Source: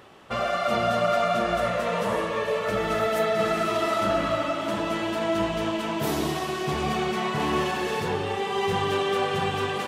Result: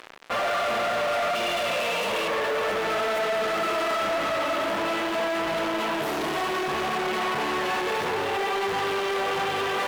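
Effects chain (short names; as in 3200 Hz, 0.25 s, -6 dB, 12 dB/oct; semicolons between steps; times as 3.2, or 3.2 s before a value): 1.35–2.28 resonant high shelf 2100 Hz +7 dB, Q 3; fuzz box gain 43 dB, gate -44 dBFS; limiter -18 dBFS, peak gain reduction 7 dB; tone controls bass -13 dB, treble -10 dB; gain -4.5 dB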